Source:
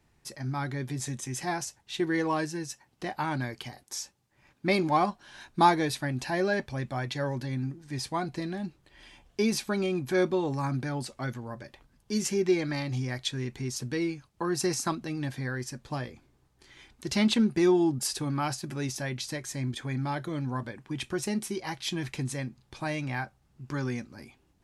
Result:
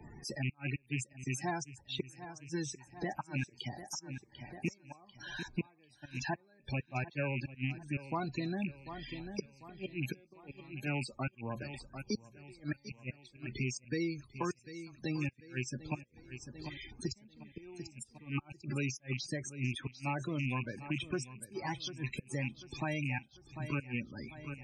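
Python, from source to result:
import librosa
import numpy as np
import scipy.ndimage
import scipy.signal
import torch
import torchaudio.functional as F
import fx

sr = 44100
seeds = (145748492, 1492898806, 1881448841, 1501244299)

p1 = fx.rattle_buzz(x, sr, strikes_db=-34.0, level_db=-23.0)
p2 = fx.bass_treble(p1, sr, bass_db=2, treble_db=6)
p3 = fx.gate_flip(p2, sr, shuts_db=-19.0, range_db=-38)
p4 = fx.spec_topn(p3, sr, count=32)
p5 = p4 + fx.echo_feedback(p4, sr, ms=744, feedback_pct=39, wet_db=-17.5, dry=0)
p6 = fx.band_squash(p5, sr, depth_pct=70)
y = p6 * librosa.db_to_amplitude(-3.5)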